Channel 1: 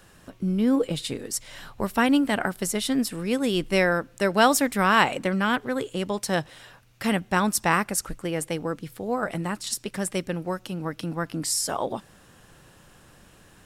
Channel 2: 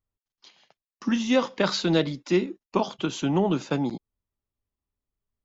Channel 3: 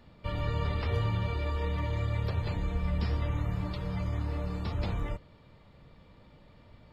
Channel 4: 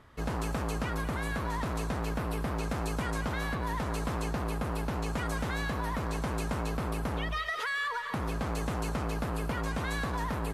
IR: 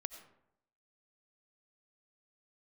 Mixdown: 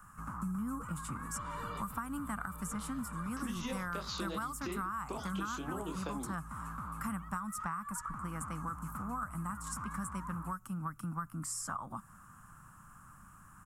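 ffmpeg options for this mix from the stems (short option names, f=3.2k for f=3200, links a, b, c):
-filter_complex "[0:a]volume=-3dB,asplit=2[a][b];[1:a]flanger=delay=19.5:depth=5.6:speed=2.4,adelay=2350,volume=3dB[c];[2:a]adelay=1100,volume=-6dB[d];[3:a]bandreject=f=700:w=12,volume=-8dB[e];[b]apad=whole_len=353814[f];[d][f]sidechaincompress=threshold=-35dB:ratio=8:attack=16:release=455[g];[c][g]amix=inputs=2:normalize=0,highpass=230,acompressor=threshold=-31dB:ratio=3,volume=0dB[h];[a][e]amix=inputs=2:normalize=0,firequalizer=gain_entry='entry(210,0);entry(420,-23);entry(1200,12);entry(1800,-8);entry(3800,-23);entry(7400,-1)':delay=0.05:min_phase=1,acompressor=threshold=-22dB:ratio=6,volume=0dB[i];[h][i]amix=inputs=2:normalize=0,acrossover=split=120|7100[j][k][l];[j]acompressor=threshold=-49dB:ratio=4[m];[k]acompressor=threshold=-38dB:ratio=4[n];[l]acompressor=threshold=-50dB:ratio=4[o];[m][n][o]amix=inputs=3:normalize=0"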